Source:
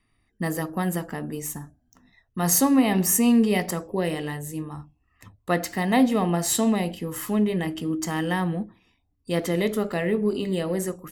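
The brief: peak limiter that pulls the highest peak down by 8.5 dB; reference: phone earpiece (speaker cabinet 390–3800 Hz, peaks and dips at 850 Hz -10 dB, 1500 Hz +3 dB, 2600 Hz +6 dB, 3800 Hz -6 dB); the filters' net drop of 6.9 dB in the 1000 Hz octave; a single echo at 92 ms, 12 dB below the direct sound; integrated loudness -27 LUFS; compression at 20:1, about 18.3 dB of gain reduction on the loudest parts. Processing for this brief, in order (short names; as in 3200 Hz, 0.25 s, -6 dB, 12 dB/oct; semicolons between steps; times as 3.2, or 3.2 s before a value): bell 1000 Hz -4 dB; compressor 20:1, threshold -33 dBFS; limiter -30.5 dBFS; speaker cabinet 390–3800 Hz, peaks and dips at 850 Hz -10 dB, 1500 Hz +3 dB, 2600 Hz +6 dB, 3800 Hz -6 dB; echo 92 ms -12 dB; gain +18 dB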